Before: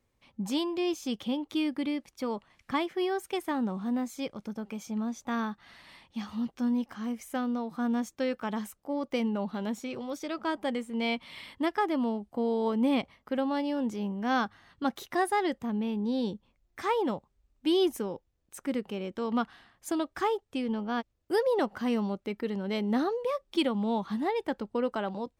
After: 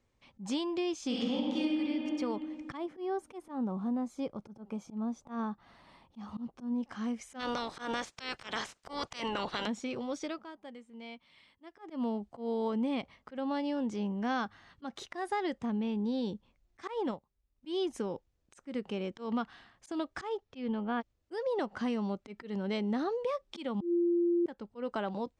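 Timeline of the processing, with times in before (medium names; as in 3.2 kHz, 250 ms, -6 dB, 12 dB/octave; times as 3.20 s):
1.06–1.74 s: reverb throw, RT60 2.2 s, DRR -6.5 dB
2.77–6.83 s: high-order bell 3.6 kHz -10.5 dB 2.7 oct
7.39–9.66 s: spectral peaks clipped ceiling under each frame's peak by 29 dB
10.22–12.06 s: dip -16.5 dB, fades 0.24 s
16.80–17.74 s: transient shaper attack -5 dB, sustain -10 dB
20.29–21.00 s: low-pass 7.7 kHz -> 2.9 kHz 24 dB/octave
23.81–24.46 s: bleep 345 Hz -7.5 dBFS
whole clip: compression, threshold -29 dBFS; slow attack 124 ms; low-pass 8.1 kHz 24 dB/octave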